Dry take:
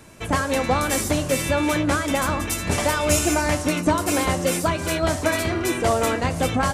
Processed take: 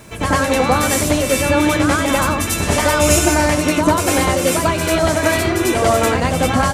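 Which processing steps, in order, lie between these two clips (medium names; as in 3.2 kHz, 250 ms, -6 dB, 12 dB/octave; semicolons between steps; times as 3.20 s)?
word length cut 10-bit, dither none; reverse echo 94 ms -4.5 dB; trim +5 dB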